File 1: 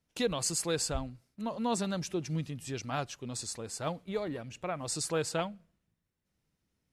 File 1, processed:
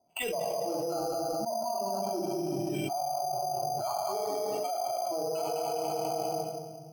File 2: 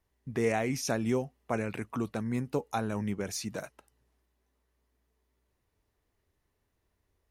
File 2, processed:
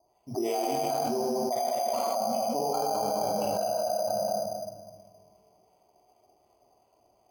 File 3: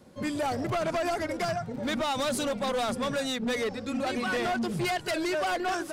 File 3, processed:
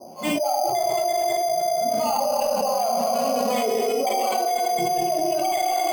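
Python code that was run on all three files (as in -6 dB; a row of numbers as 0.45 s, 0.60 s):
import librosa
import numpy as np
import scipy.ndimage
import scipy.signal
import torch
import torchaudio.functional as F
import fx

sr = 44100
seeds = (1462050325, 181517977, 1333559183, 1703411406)

p1 = fx.noise_reduce_blind(x, sr, reduce_db=17)
p2 = fx.harmonic_tremolo(p1, sr, hz=2.7, depth_pct=100, crossover_hz=950.0)
p3 = fx.double_bandpass(p2, sr, hz=1700.0, octaves=2.4)
p4 = 10.0 ** (-33.0 / 20.0) * (np.abs((p3 / 10.0 ** (-33.0 / 20.0) + 3.0) % 4.0 - 2.0) - 1.0)
p5 = p4 + fx.echo_feedback(p4, sr, ms=204, feedback_pct=24, wet_db=-5.0, dry=0)
p6 = fx.room_shoebox(p5, sr, seeds[0], volume_m3=1400.0, walls='mixed', distance_m=2.9)
p7 = np.repeat(scipy.signal.resample_poly(p6, 1, 8), 8)[:len(p6)]
p8 = fx.env_flatten(p7, sr, amount_pct=100)
y = p8 * 10.0 ** (6.0 / 20.0)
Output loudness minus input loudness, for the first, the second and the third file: +2.0 LU, +3.5 LU, +7.0 LU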